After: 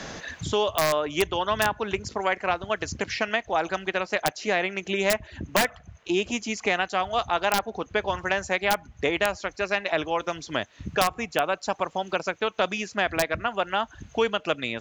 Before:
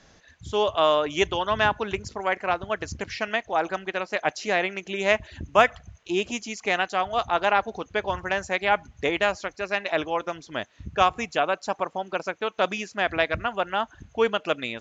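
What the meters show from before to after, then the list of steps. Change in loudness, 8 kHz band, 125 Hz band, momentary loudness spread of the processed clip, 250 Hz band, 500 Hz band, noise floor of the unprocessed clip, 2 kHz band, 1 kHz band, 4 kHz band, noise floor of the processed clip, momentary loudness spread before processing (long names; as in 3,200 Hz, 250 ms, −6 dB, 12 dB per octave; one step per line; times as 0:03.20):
−0.5 dB, can't be measured, +1.5 dB, 5 LU, +1.0 dB, −1.0 dB, −57 dBFS, −0.5 dB, −2.0 dB, +1.0 dB, −54 dBFS, 8 LU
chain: wrap-around overflow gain 9.5 dB
multiband upward and downward compressor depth 70%
level −1 dB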